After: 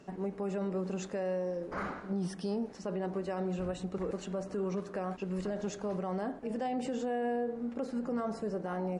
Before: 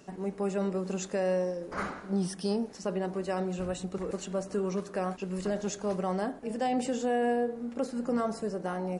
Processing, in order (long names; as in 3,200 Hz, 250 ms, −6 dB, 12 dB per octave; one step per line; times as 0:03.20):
low-pass filter 2,700 Hz 6 dB per octave
brickwall limiter −27 dBFS, peak gain reduction 5.5 dB